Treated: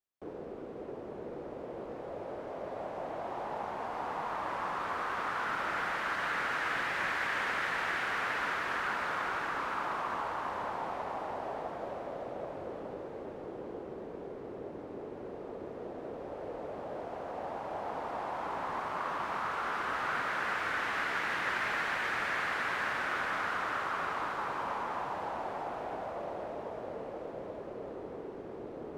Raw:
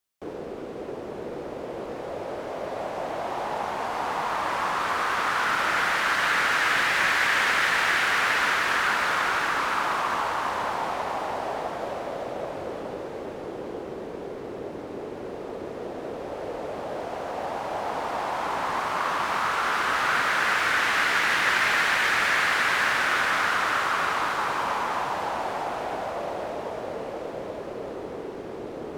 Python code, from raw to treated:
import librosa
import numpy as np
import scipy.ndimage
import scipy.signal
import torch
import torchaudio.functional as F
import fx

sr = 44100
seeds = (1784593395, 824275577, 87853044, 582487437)

y = fx.high_shelf(x, sr, hz=2400.0, db=-11.0)
y = y * 10.0 ** (-7.0 / 20.0)